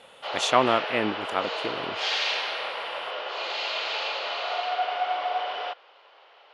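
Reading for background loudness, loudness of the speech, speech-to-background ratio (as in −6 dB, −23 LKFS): −29.0 LKFS, −26.5 LKFS, 2.5 dB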